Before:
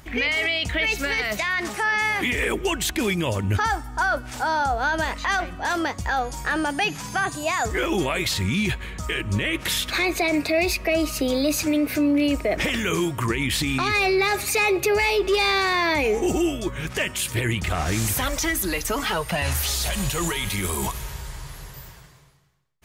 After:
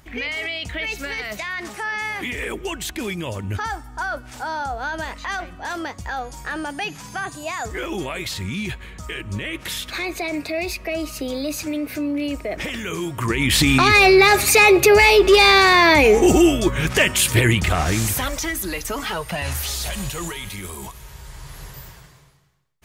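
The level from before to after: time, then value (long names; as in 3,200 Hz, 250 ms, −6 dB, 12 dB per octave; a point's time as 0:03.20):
0:12.99 −4 dB
0:13.62 +8.5 dB
0:17.38 +8.5 dB
0:18.47 −1.5 dB
0:19.91 −1.5 dB
0:20.95 −9 dB
0:21.64 +2 dB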